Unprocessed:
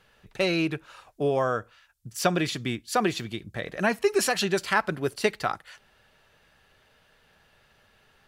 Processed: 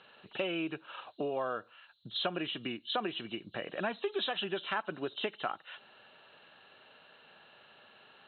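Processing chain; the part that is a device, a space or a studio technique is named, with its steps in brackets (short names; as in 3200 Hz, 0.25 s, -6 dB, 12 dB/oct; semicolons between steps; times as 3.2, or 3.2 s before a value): hearing aid with frequency lowering (nonlinear frequency compression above 2700 Hz 4:1; compressor 3:1, threshold -39 dBFS, peak gain reduction 16 dB; speaker cabinet 260–6600 Hz, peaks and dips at 450 Hz -3 dB, 2000 Hz -7 dB, 3300 Hz -3 dB); gain +5 dB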